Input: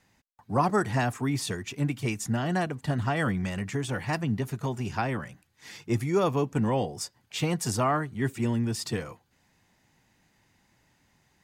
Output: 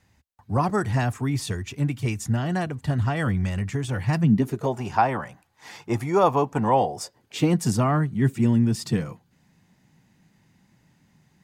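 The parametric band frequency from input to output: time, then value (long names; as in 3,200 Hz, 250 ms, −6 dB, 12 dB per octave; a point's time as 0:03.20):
parametric band +12.5 dB 1.3 octaves
0:03.93 76 Hz
0:04.41 240 Hz
0:04.81 840 Hz
0:06.84 840 Hz
0:07.73 170 Hz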